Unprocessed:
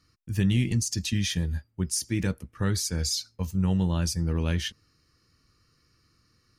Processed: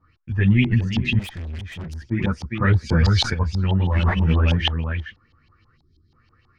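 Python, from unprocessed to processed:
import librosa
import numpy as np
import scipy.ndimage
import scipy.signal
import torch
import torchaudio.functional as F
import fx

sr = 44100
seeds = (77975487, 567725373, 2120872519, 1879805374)

y = x + 10.0 ** (-6.5 / 20.0) * np.pad(x, (int(406 * sr / 1000.0), 0))[:len(x)]
y = fx.sample_hold(y, sr, seeds[0], rate_hz=2800.0, jitter_pct=0, at=(3.92, 4.33))
y = fx.spec_box(y, sr, start_s=5.76, length_s=0.36, low_hz=450.0, high_hz=3100.0, gain_db=-24)
y = fx.chorus_voices(y, sr, voices=4, hz=1.4, base_ms=11, depth_ms=3.0, mix_pct=50)
y = fx.filter_lfo_lowpass(y, sr, shape='saw_up', hz=6.2, low_hz=800.0, high_hz=3500.0, q=5.8)
y = fx.tube_stage(y, sr, drive_db=38.0, bias=0.3, at=(1.19, 2.11))
y = fx.low_shelf(y, sr, hz=220.0, db=6.0)
y = fx.env_flatten(y, sr, amount_pct=70, at=(2.89, 3.33), fade=0.02)
y = y * 10.0 ** (4.5 / 20.0)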